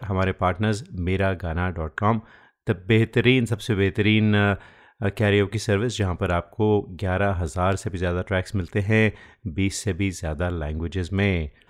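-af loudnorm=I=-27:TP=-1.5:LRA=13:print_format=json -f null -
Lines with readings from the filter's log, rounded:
"input_i" : "-23.8",
"input_tp" : "-3.6",
"input_lra" : "3.1",
"input_thresh" : "-34.0",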